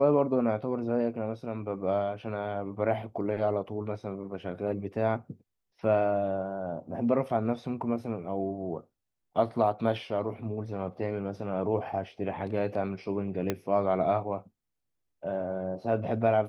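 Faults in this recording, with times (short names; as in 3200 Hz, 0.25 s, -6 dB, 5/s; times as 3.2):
13.5 pop -14 dBFS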